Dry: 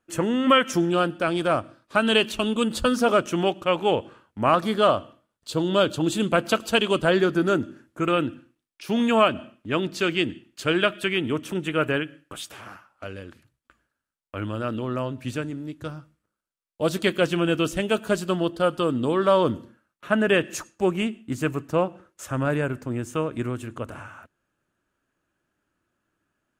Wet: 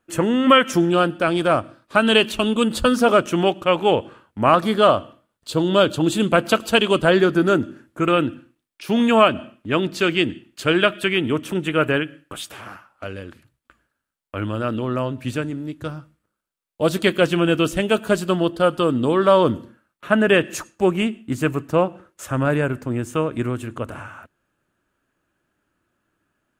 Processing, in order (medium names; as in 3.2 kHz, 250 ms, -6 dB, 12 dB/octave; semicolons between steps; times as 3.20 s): peaking EQ 5.9 kHz -3 dB; trim +4.5 dB